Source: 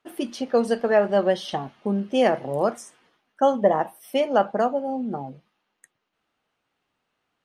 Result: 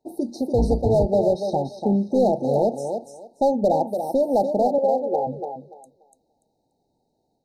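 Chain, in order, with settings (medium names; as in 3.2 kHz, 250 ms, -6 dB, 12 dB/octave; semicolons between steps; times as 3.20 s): 0.54–1.06 s: octave divider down 2 oct, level +3 dB; tilt shelf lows +5 dB, about 1.3 kHz; in parallel at +2 dB: compression 5:1, threshold -27 dBFS, peak gain reduction 16 dB; 4.78–5.27 s: on the sum: resonant low shelf 310 Hz -13 dB, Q 3; hard clipper -10.5 dBFS, distortion -13 dB; brick-wall FIR band-stop 930–3700 Hz; on a send: thinning echo 290 ms, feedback 21%, high-pass 270 Hz, level -5.5 dB; on the sum: level rider gain up to 4 dB; trim -6 dB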